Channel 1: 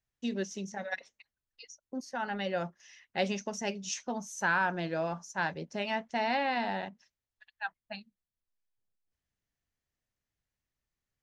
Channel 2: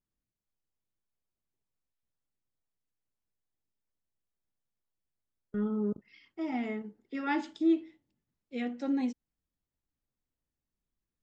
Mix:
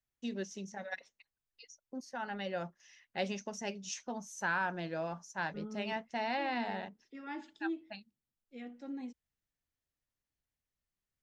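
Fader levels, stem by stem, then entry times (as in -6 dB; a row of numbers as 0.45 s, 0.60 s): -5.0 dB, -12.0 dB; 0.00 s, 0.00 s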